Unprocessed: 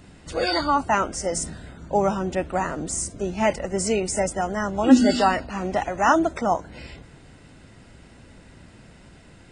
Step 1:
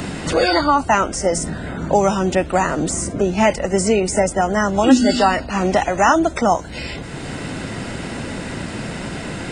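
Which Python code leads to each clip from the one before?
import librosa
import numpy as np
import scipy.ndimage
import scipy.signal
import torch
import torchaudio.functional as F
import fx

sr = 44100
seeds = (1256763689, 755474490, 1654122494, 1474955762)

y = fx.band_squash(x, sr, depth_pct=70)
y = y * 10.0 ** (6.5 / 20.0)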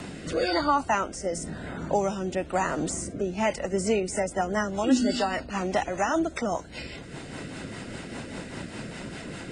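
y = fx.low_shelf(x, sr, hz=170.0, db=-4.5)
y = fx.rotary_switch(y, sr, hz=1.0, then_hz=5.0, switch_at_s=3.29)
y = y * 10.0 ** (-7.0 / 20.0)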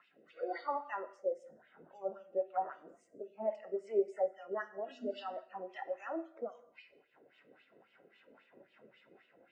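y = fx.wah_lfo(x, sr, hz=3.7, low_hz=440.0, high_hz=3200.0, q=2.6)
y = fx.rev_gated(y, sr, seeds[0], gate_ms=290, shape='falling', drr_db=6.5)
y = fx.spectral_expand(y, sr, expansion=1.5)
y = y * 10.0 ** (-1.5 / 20.0)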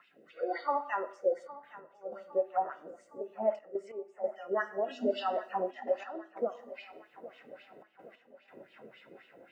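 y = fx.rider(x, sr, range_db=10, speed_s=0.5)
y = fx.step_gate(y, sr, bpm=92, pattern='xxxxxxxxx.x..', floor_db=-12.0, edge_ms=4.5)
y = fx.echo_feedback(y, sr, ms=811, feedback_pct=51, wet_db=-17.0)
y = y * 10.0 ** (6.5 / 20.0)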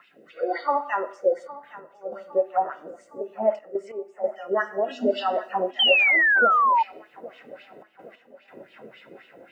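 y = fx.spec_paint(x, sr, seeds[1], shape='fall', start_s=5.79, length_s=1.04, low_hz=880.0, high_hz=3200.0, level_db=-26.0)
y = y * 10.0 ** (7.5 / 20.0)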